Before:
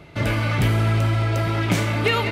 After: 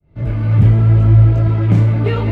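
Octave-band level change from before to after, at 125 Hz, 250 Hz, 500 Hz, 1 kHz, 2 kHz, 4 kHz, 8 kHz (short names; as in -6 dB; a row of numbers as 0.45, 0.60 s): +10.5 dB, +5.5 dB, +1.0 dB, -4.0 dB, n/a, under -10 dB, under -15 dB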